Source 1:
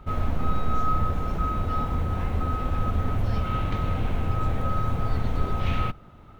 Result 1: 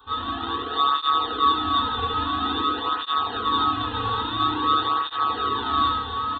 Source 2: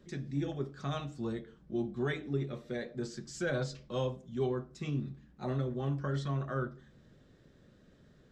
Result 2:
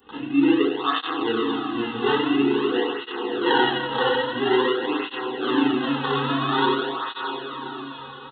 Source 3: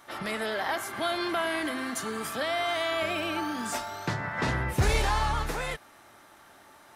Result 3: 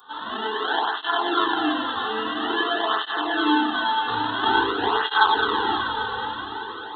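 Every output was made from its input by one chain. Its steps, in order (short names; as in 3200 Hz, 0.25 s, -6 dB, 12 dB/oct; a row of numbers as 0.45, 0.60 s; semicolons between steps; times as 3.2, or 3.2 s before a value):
FDN reverb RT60 1.5 s, low-frequency decay 0.8×, high-frequency decay 0.35×, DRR -6.5 dB; sample-rate reducer 2400 Hz, jitter 0%; downsampling 8000 Hz; tilt +4 dB/oct; fixed phaser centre 590 Hz, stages 6; on a send: diffused feedback echo 0.561 s, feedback 53%, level -6 dB; on the sum: dynamic EQ 1900 Hz, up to +4 dB, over -51 dBFS, Q 4.8; tape flanging out of phase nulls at 0.49 Hz, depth 3.2 ms; match loudness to -23 LUFS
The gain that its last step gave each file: +3.0, +15.5, +5.5 dB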